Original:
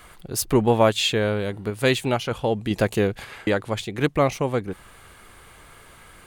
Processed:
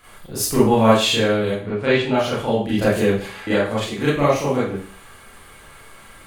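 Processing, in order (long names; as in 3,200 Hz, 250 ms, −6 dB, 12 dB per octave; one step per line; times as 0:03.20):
0:01.56–0:02.14: low-pass filter 3,100 Hz 12 dB per octave
four-comb reverb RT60 0.44 s, combs from 28 ms, DRR −9.5 dB
level −6 dB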